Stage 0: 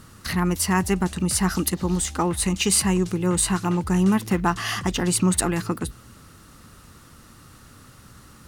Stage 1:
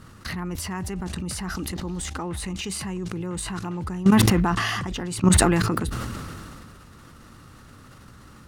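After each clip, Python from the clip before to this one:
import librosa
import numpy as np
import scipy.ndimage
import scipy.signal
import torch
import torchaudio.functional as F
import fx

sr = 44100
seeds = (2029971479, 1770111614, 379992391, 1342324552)

y = fx.level_steps(x, sr, step_db=17)
y = fx.high_shelf(y, sr, hz=5200.0, db=-9.5)
y = fx.sustainer(y, sr, db_per_s=22.0)
y = y * librosa.db_to_amplitude(4.0)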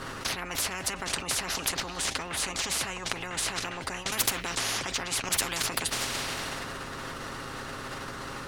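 y = fx.high_shelf(x, sr, hz=7800.0, db=-11.5)
y = y + 0.45 * np.pad(y, (int(7.4 * sr / 1000.0), 0))[:len(y)]
y = fx.spectral_comp(y, sr, ratio=10.0)
y = y * librosa.db_to_amplitude(-5.0)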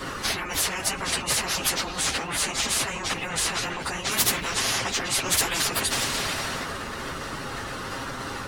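y = fx.phase_scramble(x, sr, seeds[0], window_ms=50)
y = y * librosa.db_to_amplitude(5.0)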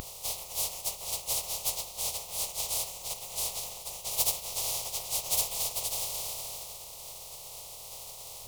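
y = fx.spec_flatten(x, sr, power=0.13)
y = fx.fixed_phaser(y, sr, hz=660.0, stages=4)
y = fx.spectral_expand(y, sr, expansion=1.5)
y = y * librosa.db_to_amplitude(-3.5)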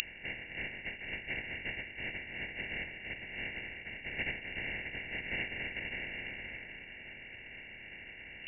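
y = x + 10.0 ** (-15.5 / 20.0) * np.pad(x, (int(1134 * sr / 1000.0), 0))[:len(x)]
y = fx.freq_invert(y, sr, carrier_hz=2800)
y = y * librosa.db_to_amplitude(4.0)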